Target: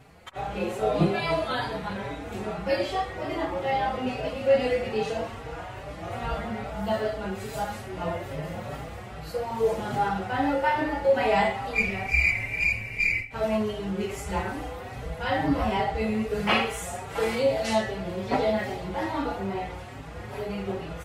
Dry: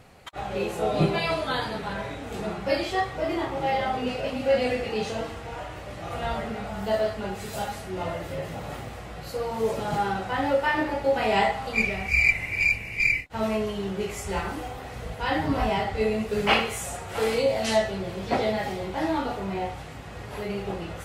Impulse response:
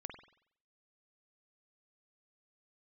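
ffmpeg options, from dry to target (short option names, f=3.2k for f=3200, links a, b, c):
-filter_complex "[0:a]aecho=1:1:85:0.158,asplit=2[a][b];[1:a]atrim=start_sample=2205,lowpass=3.3k[c];[b][c]afir=irnorm=-1:irlink=0,volume=-4dB[d];[a][d]amix=inputs=2:normalize=0,asplit=2[e][f];[f]adelay=4.7,afreqshift=2.4[g];[e][g]amix=inputs=2:normalize=1"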